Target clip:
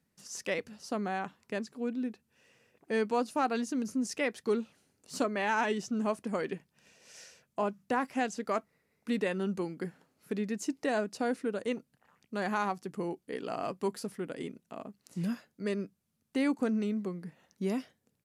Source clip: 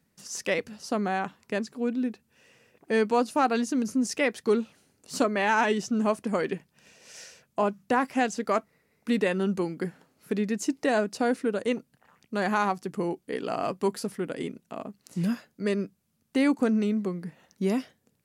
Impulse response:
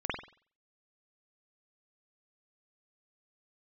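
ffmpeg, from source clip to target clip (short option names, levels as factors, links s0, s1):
-af "aresample=32000,aresample=44100,volume=0.501"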